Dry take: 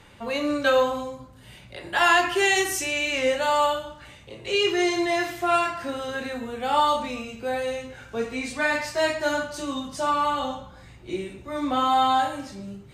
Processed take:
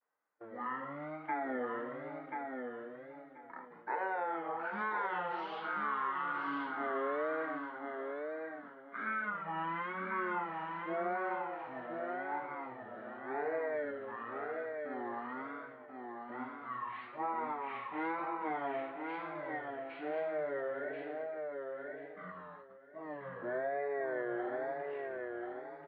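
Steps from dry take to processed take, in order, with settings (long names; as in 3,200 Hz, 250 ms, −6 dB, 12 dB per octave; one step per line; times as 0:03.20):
tape wow and flutter 150 cents
single-tap delay 392 ms −22 dB
wrong playback speed 15 ips tape played at 7.5 ips
noise gate −39 dBFS, range −25 dB
high-pass filter 550 Hz 12 dB per octave
downward compressor 12 to 1, threshold −26 dBFS, peak gain reduction 11.5 dB
low-pass filter 2,100 Hz 24 dB per octave
repeating echo 1,034 ms, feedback 18%, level −4.5 dB
level −6.5 dB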